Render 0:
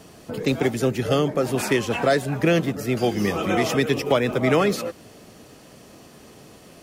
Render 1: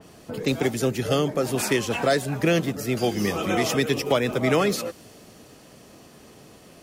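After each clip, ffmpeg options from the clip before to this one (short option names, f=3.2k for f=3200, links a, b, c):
-af "adynamicequalizer=threshold=0.00891:dfrequency=3400:dqfactor=0.7:tfrequency=3400:tqfactor=0.7:attack=5:release=100:ratio=0.375:range=2.5:mode=boostabove:tftype=highshelf,volume=-2dB"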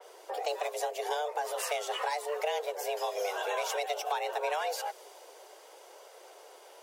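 -af "acompressor=threshold=-27dB:ratio=3,afreqshift=300,flanger=delay=1.3:depth=4.1:regen=-56:speed=0.82:shape=triangular"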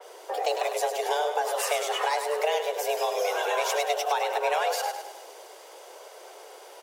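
-af "aecho=1:1:103|206|309|412|515:0.398|0.187|0.0879|0.0413|0.0194,volume=5.5dB"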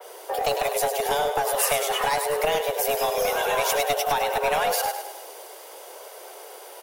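-filter_complex "[0:a]acrossover=split=1700|6900[a][b][c];[a]aeval=exprs='clip(val(0),-1,0.0562)':c=same[d];[c]aexciter=amount=3.2:drive=4.7:freq=9.3k[e];[d][b][e]amix=inputs=3:normalize=0,volume=3.5dB"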